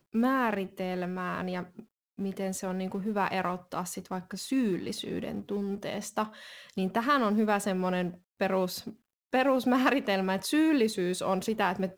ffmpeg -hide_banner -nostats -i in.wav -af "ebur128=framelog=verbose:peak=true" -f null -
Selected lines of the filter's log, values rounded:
Integrated loudness:
  I:         -30.1 LUFS
  Threshold: -40.3 LUFS
Loudness range:
  LRA:         5.9 LU
  Threshold: -50.7 LUFS
  LRA low:   -33.9 LUFS
  LRA high:  -28.0 LUFS
True peak:
  Peak:      -12.3 dBFS